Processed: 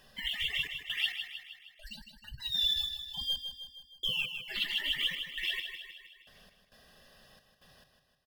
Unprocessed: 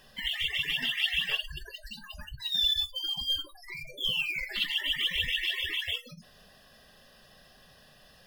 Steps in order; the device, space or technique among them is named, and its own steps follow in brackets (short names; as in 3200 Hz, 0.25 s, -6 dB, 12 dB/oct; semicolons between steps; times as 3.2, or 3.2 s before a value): trance gate with a delay (step gate "xxx.x...x." 67 bpm -60 dB; feedback echo 0.156 s, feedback 55%, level -8 dB); gain -3 dB